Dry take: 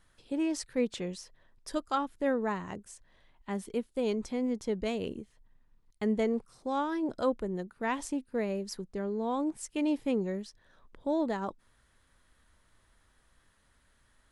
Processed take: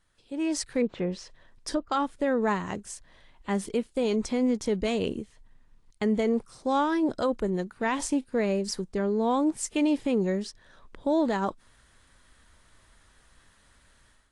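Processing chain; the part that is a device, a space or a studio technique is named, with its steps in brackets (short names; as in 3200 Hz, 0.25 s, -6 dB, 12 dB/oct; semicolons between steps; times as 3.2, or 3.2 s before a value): 0.81–1.92 treble ducked by the level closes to 740 Hz, closed at -28.5 dBFS; high shelf 2200 Hz +3 dB; low-bitrate web radio (AGC gain up to 12.5 dB; limiter -11.5 dBFS, peak gain reduction 7 dB; gain -5.5 dB; AAC 48 kbps 22050 Hz)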